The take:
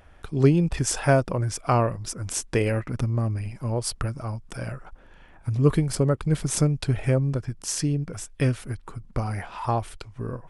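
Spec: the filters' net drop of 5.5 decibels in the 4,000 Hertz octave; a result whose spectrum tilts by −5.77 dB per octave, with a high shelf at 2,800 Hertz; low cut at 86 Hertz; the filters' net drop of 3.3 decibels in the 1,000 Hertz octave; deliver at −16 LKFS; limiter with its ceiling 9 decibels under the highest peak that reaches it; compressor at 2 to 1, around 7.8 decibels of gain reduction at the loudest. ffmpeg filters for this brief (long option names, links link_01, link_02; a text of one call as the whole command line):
ffmpeg -i in.wav -af "highpass=86,equalizer=frequency=1000:width_type=o:gain=-4,highshelf=frequency=2800:gain=-3.5,equalizer=frequency=4000:width_type=o:gain=-4,acompressor=threshold=-27dB:ratio=2,volume=17dB,alimiter=limit=-5.5dB:level=0:latency=1" out.wav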